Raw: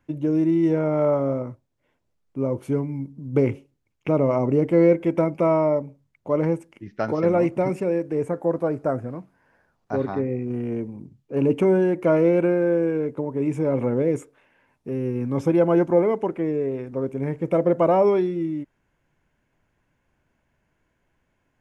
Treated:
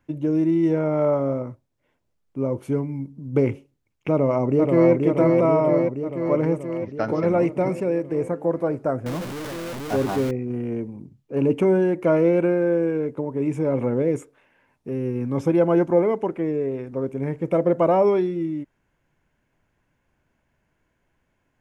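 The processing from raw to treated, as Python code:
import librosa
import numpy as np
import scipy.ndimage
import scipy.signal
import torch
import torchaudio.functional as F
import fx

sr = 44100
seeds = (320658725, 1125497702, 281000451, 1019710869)

y = fx.echo_throw(x, sr, start_s=4.11, length_s=0.81, ms=480, feedback_pct=70, wet_db=-3.0)
y = fx.zero_step(y, sr, step_db=-26.5, at=(9.06, 10.31))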